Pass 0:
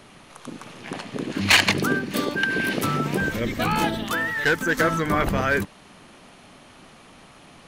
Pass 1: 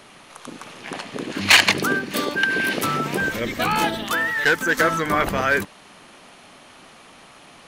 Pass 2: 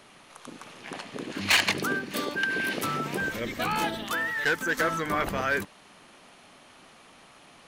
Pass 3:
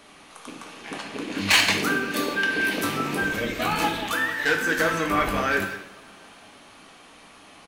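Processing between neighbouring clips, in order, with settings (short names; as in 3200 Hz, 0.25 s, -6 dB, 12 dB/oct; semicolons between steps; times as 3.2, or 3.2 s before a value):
low shelf 270 Hz -9.5 dB; gain +3.5 dB
soft clip -8 dBFS, distortion -19 dB; gain -6.5 dB
rattling part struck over -45 dBFS, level -32 dBFS; speakerphone echo 0.18 s, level -10 dB; two-slope reverb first 0.51 s, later 3.6 s, from -27 dB, DRR 1.5 dB; gain +1.5 dB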